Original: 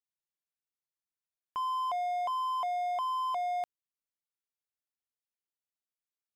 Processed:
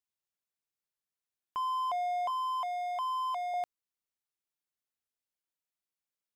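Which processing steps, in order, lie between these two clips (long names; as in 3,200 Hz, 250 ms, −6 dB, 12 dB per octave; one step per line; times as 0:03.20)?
0:02.30–0:03.54: high-pass filter 700 Hz 12 dB per octave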